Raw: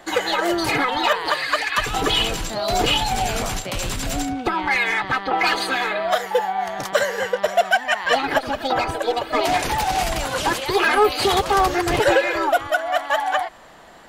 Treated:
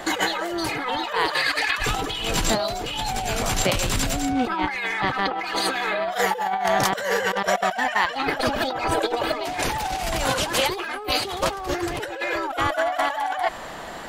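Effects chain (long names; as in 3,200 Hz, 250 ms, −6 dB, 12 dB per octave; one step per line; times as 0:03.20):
compressor whose output falls as the input rises −29 dBFS, ratio −1
level +3.5 dB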